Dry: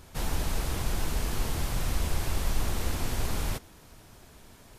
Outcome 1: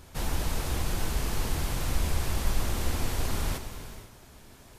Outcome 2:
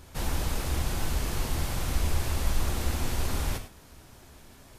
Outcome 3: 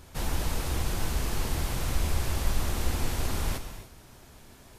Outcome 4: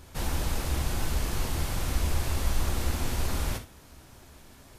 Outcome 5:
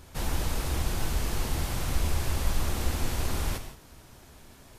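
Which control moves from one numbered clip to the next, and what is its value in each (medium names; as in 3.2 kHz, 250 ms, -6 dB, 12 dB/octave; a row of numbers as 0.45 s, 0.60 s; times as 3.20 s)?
gated-style reverb, gate: 530 ms, 130 ms, 320 ms, 90 ms, 200 ms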